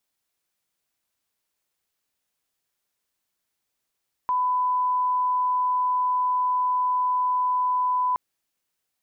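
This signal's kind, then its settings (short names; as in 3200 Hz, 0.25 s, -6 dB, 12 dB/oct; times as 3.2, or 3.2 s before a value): line-up tone -20 dBFS 3.87 s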